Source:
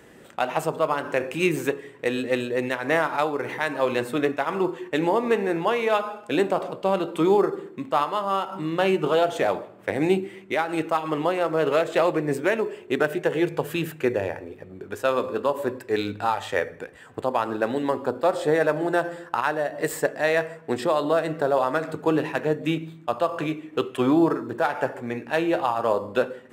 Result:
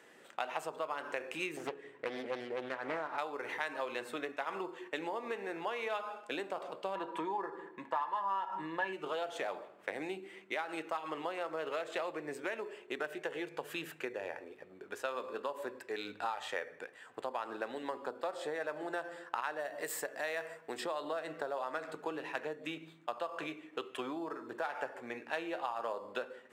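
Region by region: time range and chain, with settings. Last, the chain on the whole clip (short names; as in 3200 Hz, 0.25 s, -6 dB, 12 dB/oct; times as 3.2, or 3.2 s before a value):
1.57–3.18 tilt -2 dB/oct + Doppler distortion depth 0.57 ms
6.95–8.93 high shelf 3100 Hz -8 dB + comb 5.9 ms, depth 40% + small resonant body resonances 950/1700 Hz, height 18 dB, ringing for 40 ms
19.6–20.82 high shelf 9900 Hz +11.5 dB + compressor 1.5:1, threshold -26 dBFS
whole clip: compressor, threshold -25 dBFS; weighting filter A; gain -7 dB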